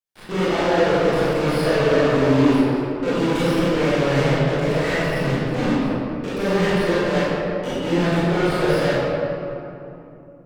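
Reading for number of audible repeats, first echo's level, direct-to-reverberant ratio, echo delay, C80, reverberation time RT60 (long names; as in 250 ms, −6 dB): no echo audible, no echo audible, −11.5 dB, no echo audible, −2.5 dB, 2.9 s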